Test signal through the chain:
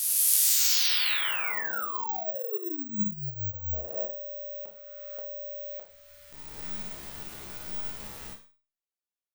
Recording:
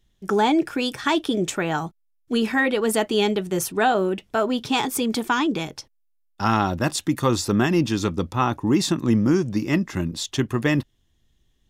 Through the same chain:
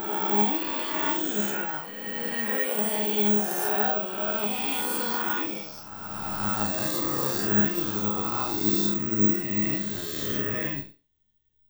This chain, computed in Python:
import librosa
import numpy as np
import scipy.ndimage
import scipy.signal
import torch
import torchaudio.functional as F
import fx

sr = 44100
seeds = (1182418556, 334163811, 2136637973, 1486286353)

p1 = fx.spec_swells(x, sr, rise_s=2.76)
p2 = fx.resonator_bank(p1, sr, root=37, chord='fifth', decay_s=0.31)
p3 = np.sign(p2) * np.maximum(np.abs(p2) - 10.0 ** (-36.0 / 20.0), 0.0)
p4 = p2 + (p3 * librosa.db_to_amplitude(-11.0))
p5 = fx.rev_schroeder(p4, sr, rt60_s=0.32, comb_ms=31, drr_db=8.0)
p6 = (np.kron(p5[::2], np.eye(2)[0]) * 2)[:len(p5)]
y = p6 * librosa.db_to_amplitude(-5.5)